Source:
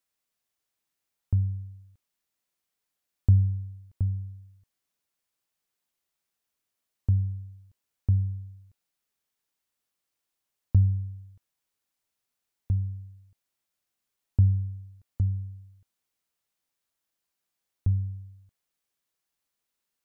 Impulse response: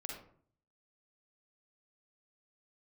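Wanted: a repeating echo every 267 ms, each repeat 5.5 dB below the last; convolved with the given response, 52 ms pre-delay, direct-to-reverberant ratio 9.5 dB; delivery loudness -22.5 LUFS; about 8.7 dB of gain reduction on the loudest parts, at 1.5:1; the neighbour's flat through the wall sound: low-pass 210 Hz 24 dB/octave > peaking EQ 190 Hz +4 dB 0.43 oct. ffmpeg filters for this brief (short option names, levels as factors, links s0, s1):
-filter_complex "[0:a]acompressor=threshold=0.01:ratio=1.5,aecho=1:1:267|534|801|1068|1335|1602|1869:0.531|0.281|0.149|0.079|0.0419|0.0222|0.0118,asplit=2[s0][s1];[1:a]atrim=start_sample=2205,adelay=52[s2];[s1][s2]afir=irnorm=-1:irlink=0,volume=0.398[s3];[s0][s3]amix=inputs=2:normalize=0,lowpass=f=210:w=0.5412,lowpass=f=210:w=1.3066,equalizer=f=190:t=o:w=0.43:g=4,volume=3.76"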